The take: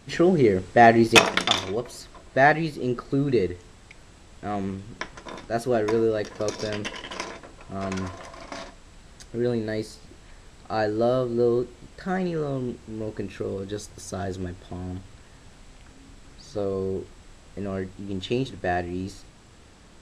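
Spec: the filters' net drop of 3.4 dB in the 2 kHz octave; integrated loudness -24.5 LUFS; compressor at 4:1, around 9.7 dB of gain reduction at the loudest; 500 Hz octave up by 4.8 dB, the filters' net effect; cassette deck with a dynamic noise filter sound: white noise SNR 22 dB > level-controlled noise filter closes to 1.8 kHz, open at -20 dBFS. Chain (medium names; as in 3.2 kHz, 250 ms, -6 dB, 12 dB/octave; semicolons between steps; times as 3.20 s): peaking EQ 500 Hz +6.5 dB; peaking EQ 2 kHz -4.5 dB; compression 4:1, threshold -19 dBFS; white noise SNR 22 dB; level-controlled noise filter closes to 1.8 kHz, open at -20 dBFS; trim +2 dB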